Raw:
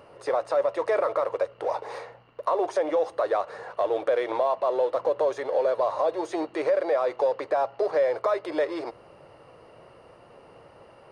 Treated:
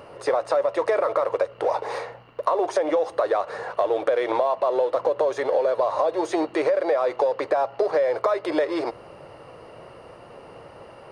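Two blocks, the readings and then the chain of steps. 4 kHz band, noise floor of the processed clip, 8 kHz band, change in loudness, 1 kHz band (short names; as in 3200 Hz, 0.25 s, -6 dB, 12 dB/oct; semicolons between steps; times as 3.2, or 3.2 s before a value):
+4.5 dB, -46 dBFS, n/a, +2.5 dB, +3.0 dB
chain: compressor, threshold -25 dBFS, peak gain reduction 6.5 dB; gain +7 dB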